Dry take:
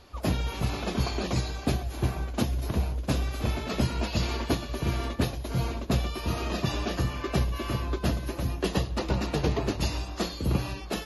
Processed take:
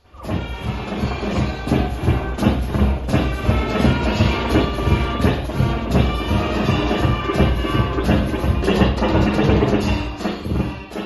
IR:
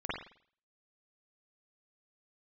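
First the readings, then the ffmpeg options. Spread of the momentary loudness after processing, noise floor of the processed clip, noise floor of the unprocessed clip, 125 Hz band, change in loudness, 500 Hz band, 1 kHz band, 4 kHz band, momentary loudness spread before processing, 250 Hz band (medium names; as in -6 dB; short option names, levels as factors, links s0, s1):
7 LU, -30 dBFS, -39 dBFS, +10.0 dB, +10.0 dB, +11.5 dB, +11.5 dB, +7.0 dB, 3 LU, +12.0 dB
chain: -filter_complex "[1:a]atrim=start_sample=2205[s0];[0:a][s0]afir=irnorm=-1:irlink=0,dynaudnorm=f=310:g=9:m=3.76"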